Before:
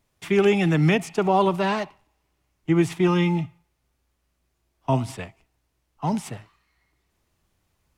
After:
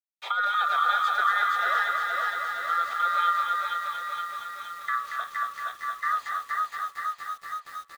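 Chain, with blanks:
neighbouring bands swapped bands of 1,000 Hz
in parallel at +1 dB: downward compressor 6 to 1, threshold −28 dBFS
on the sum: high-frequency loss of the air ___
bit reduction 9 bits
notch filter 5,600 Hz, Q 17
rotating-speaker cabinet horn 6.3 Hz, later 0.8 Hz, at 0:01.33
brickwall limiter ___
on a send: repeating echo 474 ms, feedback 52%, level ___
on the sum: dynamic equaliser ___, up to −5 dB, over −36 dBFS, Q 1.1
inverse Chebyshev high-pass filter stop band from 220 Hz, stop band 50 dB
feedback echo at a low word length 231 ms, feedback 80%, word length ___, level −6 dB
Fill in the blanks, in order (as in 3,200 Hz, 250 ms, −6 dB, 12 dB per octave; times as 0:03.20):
190 metres, −16 dBFS, −3.5 dB, 2,300 Hz, 8 bits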